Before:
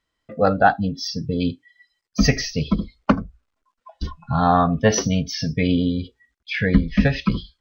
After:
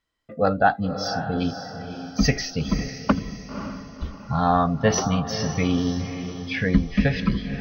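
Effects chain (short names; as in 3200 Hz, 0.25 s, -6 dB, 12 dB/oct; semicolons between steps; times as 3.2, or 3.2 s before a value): 3.12–4.21 fixed phaser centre 2300 Hz, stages 4; diffused feedback echo 0.534 s, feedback 43%, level -9 dB; gain -3 dB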